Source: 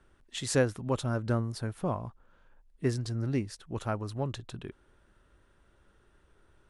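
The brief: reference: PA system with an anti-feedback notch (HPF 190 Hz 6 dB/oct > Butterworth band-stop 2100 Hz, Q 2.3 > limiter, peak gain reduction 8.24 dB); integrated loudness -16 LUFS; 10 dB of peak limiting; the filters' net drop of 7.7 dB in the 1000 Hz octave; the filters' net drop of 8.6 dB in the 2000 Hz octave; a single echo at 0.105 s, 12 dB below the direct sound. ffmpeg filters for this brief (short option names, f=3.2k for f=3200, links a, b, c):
-af "equalizer=f=1k:t=o:g=-9,equalizer=f=2k:t=o:g=-5,alimiter=limit=-24dB:level=0:latency=1,highpass=f=190:p=1,asuperstop=centerf=2100:order=8:qfactor=2.3,aecho=1:1:105:0.251,volume=26dB,alimiter=limit=-6dB:level=0:latency=1"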